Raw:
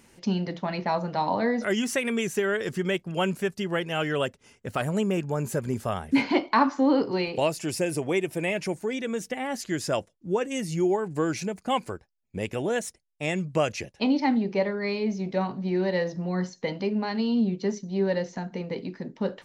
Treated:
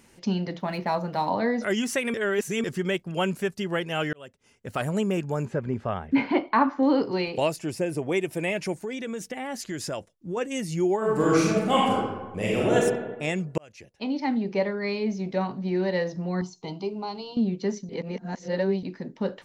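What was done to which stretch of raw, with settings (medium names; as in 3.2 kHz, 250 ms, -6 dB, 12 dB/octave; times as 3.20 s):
0.60–1.30 s: median filter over 5 samples
2.14–2.64 s: reverse
4.13–4.84 s: fade in
5.45–6.83 s: low-pass 2.5 kHz
7.56–8.12 s: treble shelf 2.2 kHz -8.5 dB
8.76–10.37 s: compression 3:1, threshold -29 dBFS
10.97–12.76 s: reverb throw, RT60 1.2 s, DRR -6 dB
13.58–14.56 s: fade in
16.41–17.37 s: static phaser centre 350 Hz, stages 8
17.89–18.83 s: reverse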